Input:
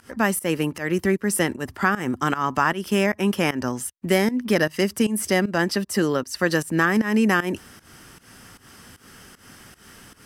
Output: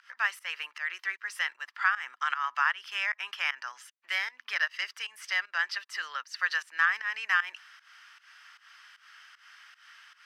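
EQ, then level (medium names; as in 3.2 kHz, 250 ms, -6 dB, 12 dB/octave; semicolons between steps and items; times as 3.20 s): high-pass 1.3 kHz 24 dB/octave; distance through air 240 m; treble shelf 5.5 kHz +6 dB; 0.0 dB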